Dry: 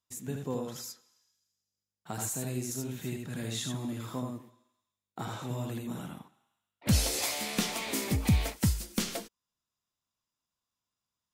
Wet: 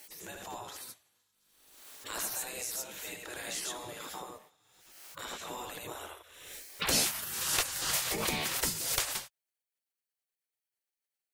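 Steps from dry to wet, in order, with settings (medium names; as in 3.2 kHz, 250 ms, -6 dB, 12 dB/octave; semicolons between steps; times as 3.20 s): spectral gate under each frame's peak -15 dB weak; swell ahead of each attack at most 48 dB/s; trim +4.5 dB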